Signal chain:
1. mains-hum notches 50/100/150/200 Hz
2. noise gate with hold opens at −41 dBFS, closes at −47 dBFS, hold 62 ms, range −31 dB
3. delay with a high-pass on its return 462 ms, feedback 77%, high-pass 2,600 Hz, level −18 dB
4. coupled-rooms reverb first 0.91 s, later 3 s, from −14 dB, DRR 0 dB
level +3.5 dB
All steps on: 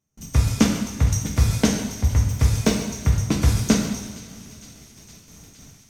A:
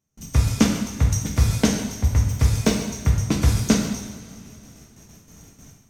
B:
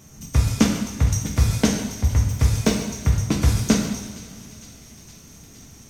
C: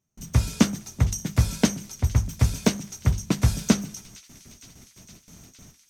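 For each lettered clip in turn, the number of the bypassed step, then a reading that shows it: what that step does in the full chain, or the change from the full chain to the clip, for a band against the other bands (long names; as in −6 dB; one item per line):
3, change in momentary loudness spread −3 LU
2, change in momentary loudness spread +3 LU
4, change in momentary loudness spread −6 LU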